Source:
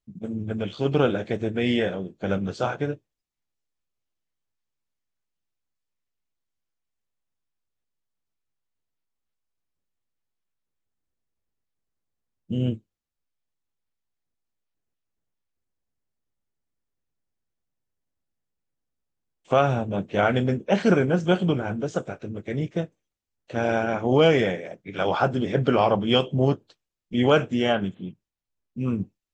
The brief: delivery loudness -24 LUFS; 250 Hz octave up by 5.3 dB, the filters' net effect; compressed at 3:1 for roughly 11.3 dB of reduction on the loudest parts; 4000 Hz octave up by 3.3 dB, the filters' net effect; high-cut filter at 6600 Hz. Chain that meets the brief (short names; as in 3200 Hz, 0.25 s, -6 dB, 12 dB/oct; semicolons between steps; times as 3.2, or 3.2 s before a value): LPF 6600 Hz; bell 250 Hz +6.5 dB; bell 4000 Hz +5 dB; compressor 3:1, threshold -27 dBFS; gain +6 dB